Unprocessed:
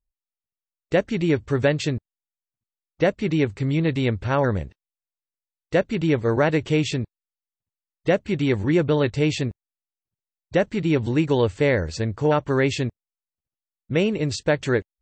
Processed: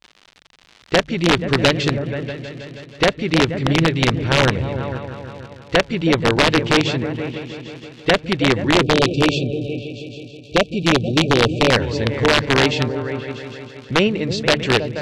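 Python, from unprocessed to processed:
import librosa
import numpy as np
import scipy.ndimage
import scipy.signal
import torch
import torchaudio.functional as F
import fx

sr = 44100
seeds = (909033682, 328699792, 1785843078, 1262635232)

p1 = fx.echo_opening(x, sr, ms=160, hz=200, octaves=2, feedback_pct=70, wet_db=-6)
p2 = fx.dmg_crackle(p1, sr, seeds[0], per_s=140.0, level_db=-33.0)
p3 = fx.level_steps(p2, sr, step_db=10)
p4 = p2 + F.gain(torch.from_numpy(p3), -0.5).numpy()
p5 = fx.spec_erase(p4, sr, start_s=8.83, length_s=2.88, low_hz=790.0, high_hz=2300.0)
p6 = (np.mod(10.0 ** (6.5 / 20.0) * p5 + 1.0, 2.0) - 1.0) / 10.0 ** (6.5 / 20.0)
p7 = scipy.signal.sosfilt(scipy.signal.butter(2, 4700.0, 'lowpass', fs=sr, output='sos'), p6)
p8 = fx.peak_eq(p7, sr, hz=3500.0, db=5.0, octaves=1.7)
p9 = fx.hum_notches(p8, sr, base_hz=50, count=3)
y = F.gain(torch.from_numpy(p9), -1.0).numpy()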